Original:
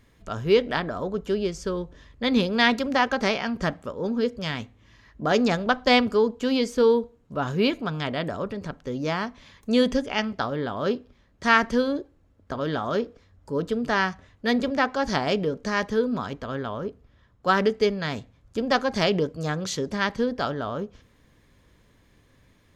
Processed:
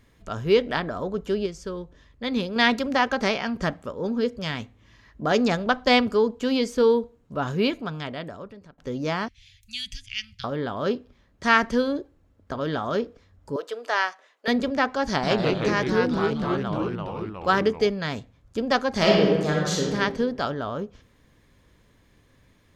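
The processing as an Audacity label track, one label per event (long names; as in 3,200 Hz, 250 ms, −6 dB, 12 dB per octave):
1.460000	2.560000	clip gain −4.5 dB
7.520000	8.780000	fade out, to −21 dB
9.280000	10.440000	elliptic band-stop filter 110–2,500 Hz, stop band 80 dB
13.560000	14.480000	high-pass filter 480 Hz 24 dB per octave
15.080000	17.890000	delay with pitch and tempo change per echo 148 ms, each echo −2 semitones, echoes 3
18.900000	19.930000	thrown reverb, RT60 1.3 s, DRR −2.5 dB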